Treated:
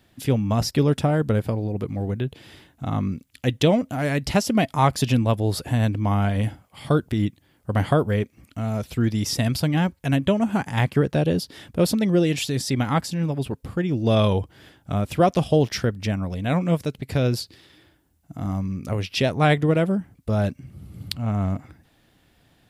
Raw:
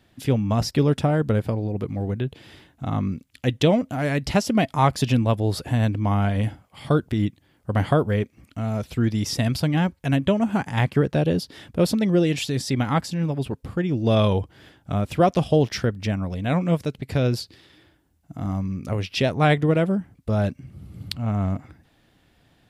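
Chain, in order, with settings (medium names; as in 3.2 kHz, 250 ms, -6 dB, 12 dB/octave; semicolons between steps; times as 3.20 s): treble shelf 8.4 kHz +6.5 dB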